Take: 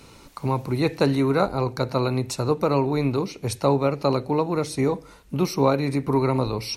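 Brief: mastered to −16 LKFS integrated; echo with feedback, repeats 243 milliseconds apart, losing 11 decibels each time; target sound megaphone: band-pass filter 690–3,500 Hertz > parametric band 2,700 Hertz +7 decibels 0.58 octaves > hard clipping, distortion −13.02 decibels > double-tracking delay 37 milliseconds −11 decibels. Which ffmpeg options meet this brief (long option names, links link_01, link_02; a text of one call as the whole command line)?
ffmpeg -i in.wav -filter_complex "[0:a]highpass=690,lowpass=3500,equalizer=frequency=2700:width_type=o:width=0.58:gain=7,aecho=1:1:243|486|729:0.282|0.0789|0.0221,asoftclip=type=hard:threshold=-21dB,asplit=2[link_01][link_02];[link_02]adelay=37,volume=-11dB[link_03];[link_01][link_03]amix=inputs=2:normalize=0,volume=14.5dB" out.wav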